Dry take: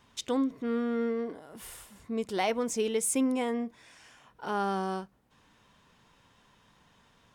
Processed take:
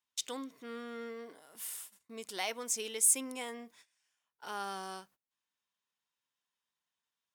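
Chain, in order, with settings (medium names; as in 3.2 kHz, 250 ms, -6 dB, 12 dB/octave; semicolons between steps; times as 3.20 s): gate -51 dBFS, range -23 dB; tilt EQ +4 dB/octave; trim -8 dB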